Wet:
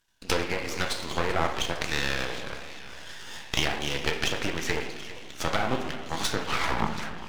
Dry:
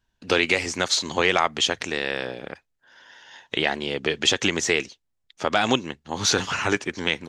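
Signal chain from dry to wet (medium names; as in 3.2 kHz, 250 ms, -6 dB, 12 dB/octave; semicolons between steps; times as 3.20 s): tape stop on the ending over 0.84 s; low-pass that closes with the level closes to 1.1 kHz, closed at -17.5 dBFS; simulated room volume 230 m³, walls mixed, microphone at 0.68 m; in parallel at -2.5 dB: compression, threshold -39 dBFS, peak gain reduction 22.5 dB; on the sum: tilt EQ +2.5 dB/octave; on a send: feedback echo behind a high-pass 729 ms, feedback 63%, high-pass 2.1 kHz, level -16 dB; on the sum: half-wave rectifier; modulated delay 394 ms, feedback 57%, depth 183 cents, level -16 dB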